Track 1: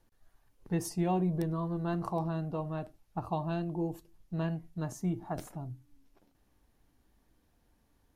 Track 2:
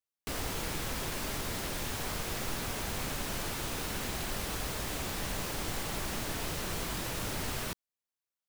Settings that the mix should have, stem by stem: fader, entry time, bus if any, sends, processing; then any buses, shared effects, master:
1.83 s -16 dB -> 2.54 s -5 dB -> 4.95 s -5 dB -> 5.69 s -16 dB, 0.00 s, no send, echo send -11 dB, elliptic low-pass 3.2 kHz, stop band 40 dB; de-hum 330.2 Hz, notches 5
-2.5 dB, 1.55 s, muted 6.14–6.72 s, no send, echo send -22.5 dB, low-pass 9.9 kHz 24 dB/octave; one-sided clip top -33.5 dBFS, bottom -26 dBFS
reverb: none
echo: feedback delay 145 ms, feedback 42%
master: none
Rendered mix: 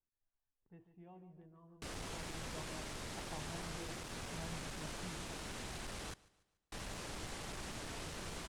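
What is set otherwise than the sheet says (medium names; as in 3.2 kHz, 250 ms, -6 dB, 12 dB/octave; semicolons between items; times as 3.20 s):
stem 1 -16.0 dB -> -26.5 dB; stem 2 -2.5 dB -> -8.5 dB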